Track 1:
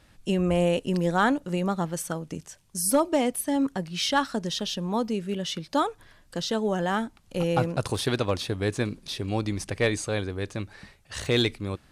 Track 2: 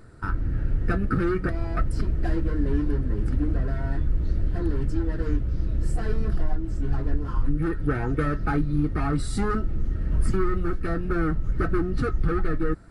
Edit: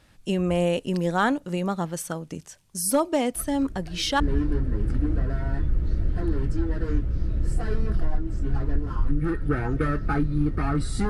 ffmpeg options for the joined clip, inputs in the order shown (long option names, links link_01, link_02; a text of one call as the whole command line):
ffmpeg -i cue0.wav -i cue1.wav -filter_complex "[1:a]asplit=2[link_01][link_02];[0:a]apad=whole_dur=11.09,atrim=end=11.09,atrim=end=4.202[link_03];[link_02]atrim=start=2.578:end=9.47[link_04];[link_01]atrim=start=1.73:end=2.58,asetpts=PTS-STARTPTS,volume=-15.5dB,afade=type=in:duration=0.004:curve=hsin,afade=type=out:start_time=0.846:duration=0.004:curve=hsin,adelay=3350[link_05];[link_03][link_04]acrossfade=duration=0.004:curve1=hsin:curve2=hsin[link_06];[link_06][link_05]amix=inputs=2:normalize=0" out.wav